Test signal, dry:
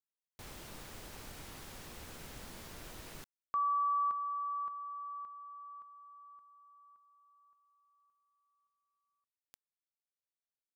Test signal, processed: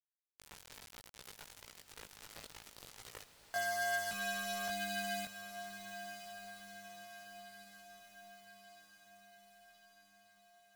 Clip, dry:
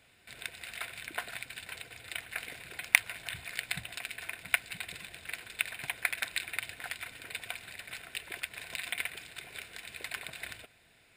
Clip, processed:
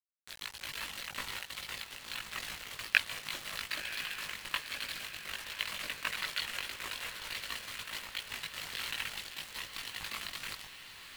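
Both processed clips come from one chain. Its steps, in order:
ring modulation 450 Hz
parametric band 230 Hz −5.5 dB 1.5 octaves
in parallel at −3 dB: compressor whose output falls as the input rises −46 dBFS, ratio −1
on the sum: high shelf with overshoot 5,800 Hz −9.5 dB, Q 3
bit reduction 6 bits
multi-voice chorus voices 6, 0.66 Hz, delay 19 ms, depth 1.2 ms
on a send: feedback delay with all-pass diffusion 1,038 ms, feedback 62%, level −10 dB

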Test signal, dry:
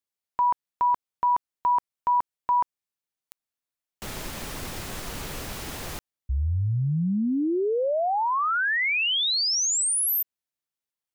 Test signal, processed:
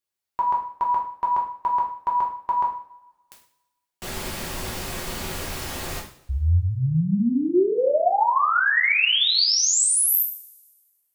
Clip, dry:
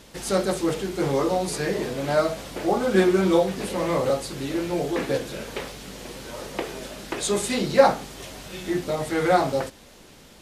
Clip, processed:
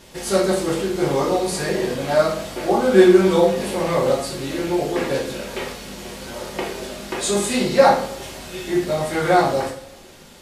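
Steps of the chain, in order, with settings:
coupled-rooms reverb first 0.48 s, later 1.5 s, from −21 dB, DRR −2.5 dB

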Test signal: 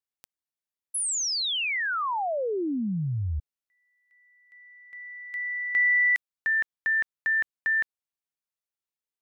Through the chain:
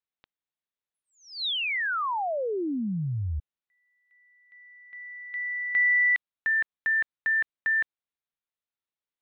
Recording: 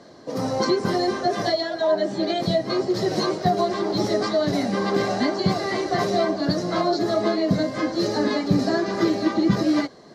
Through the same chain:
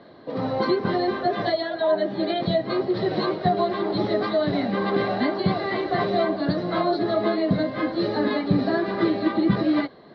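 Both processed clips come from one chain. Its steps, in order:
elliptic low-pass filter 3,900 Hz, stop band 60 dB

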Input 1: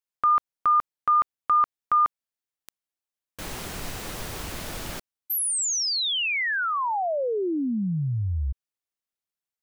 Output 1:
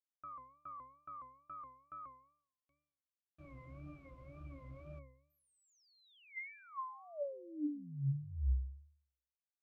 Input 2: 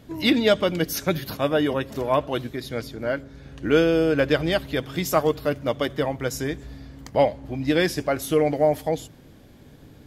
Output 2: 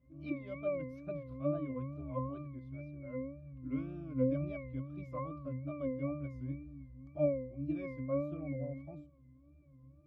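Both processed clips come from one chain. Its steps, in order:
resonances in every octave C#, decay 0.59 s
tape wow and flutter 2.1 Hz 120 cents

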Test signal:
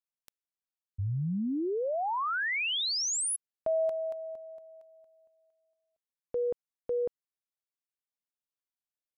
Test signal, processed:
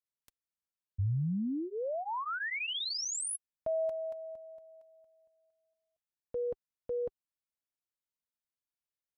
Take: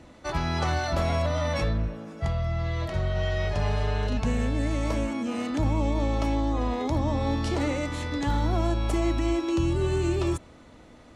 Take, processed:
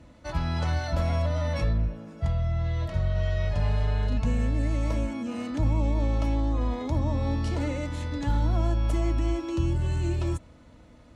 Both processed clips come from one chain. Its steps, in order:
low-shelf EQ 110 Hz +10.5 dB
notch comb filter 390 Hz
level −4 dB

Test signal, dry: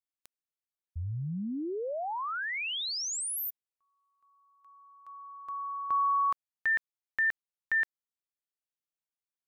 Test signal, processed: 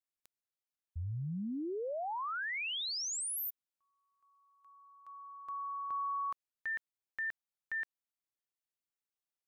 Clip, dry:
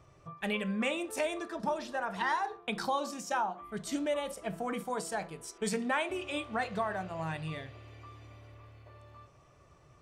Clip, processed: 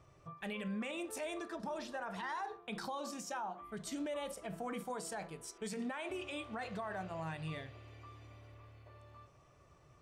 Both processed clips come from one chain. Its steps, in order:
brickwall limiter −29.5 dBFS
level −3.5 dB

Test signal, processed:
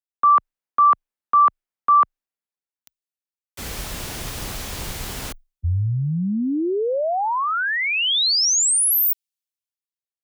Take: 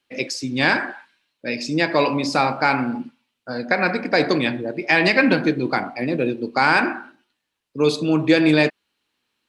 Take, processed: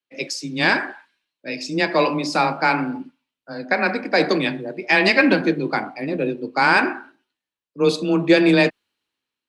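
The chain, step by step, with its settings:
frequency shifter +17 Hz
multiband upward and downward expander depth 40%

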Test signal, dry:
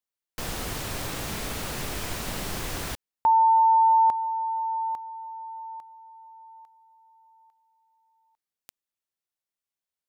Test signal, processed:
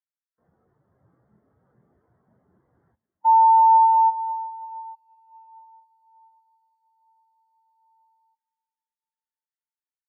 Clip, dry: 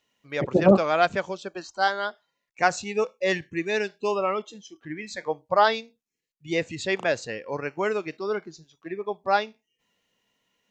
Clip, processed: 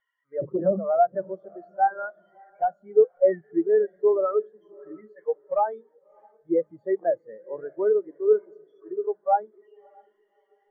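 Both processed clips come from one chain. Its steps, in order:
spike at every zero crossing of −18.5 dBFS
high-pass filter 94 Hz 12 dB per octave
mains-hum notches 50/100/150/200/250/300 Hz
downward compressor 10 to 1, threshold −20 dBFS
Savitzky-Golay smoothing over 41 samples
sine wavefolder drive 6 dB, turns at −11 dBFS
feedback delay with all-pass diffusion 618 ms, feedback 59%, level −10 dB
every bin expanded away from the loudest bin 2.5 to 1

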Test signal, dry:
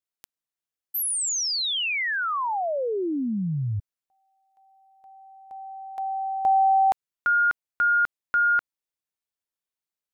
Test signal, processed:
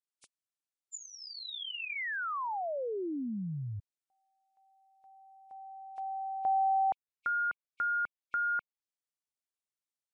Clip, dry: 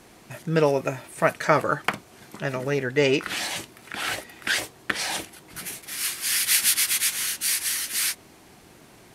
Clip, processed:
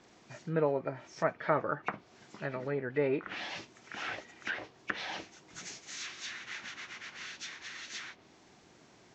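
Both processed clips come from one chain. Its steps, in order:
hearing-aid frequency compression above 2,200 Hz 1.5 to 1
low-shelf EQ 64 Hz −11 dB
treble cut that deepens with the level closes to 1,600 Hz, closed at −22 dBFS
level −8.5 dB

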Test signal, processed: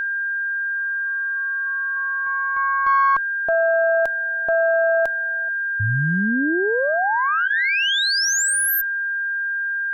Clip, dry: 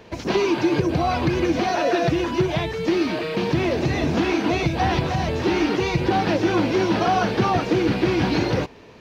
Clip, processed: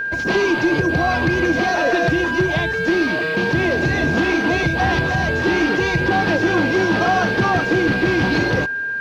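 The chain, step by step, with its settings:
harmonic generator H 5 −17 dB, 6 −28 dB, 7 −25 dB, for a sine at −7.5 dBFS
steady tone 1,600 Hz −21 dBFS

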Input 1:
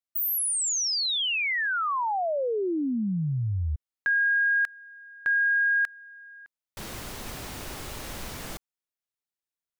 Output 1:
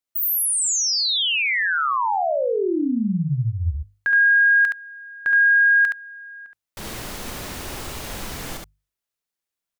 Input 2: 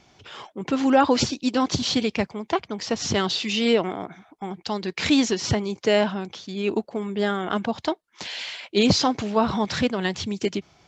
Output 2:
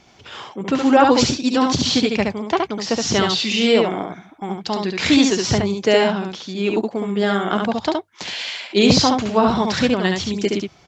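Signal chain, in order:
mains-hum notches 50/100/150 Hz
single-tap delay 70 ms −3.5 dB
level +4 dB

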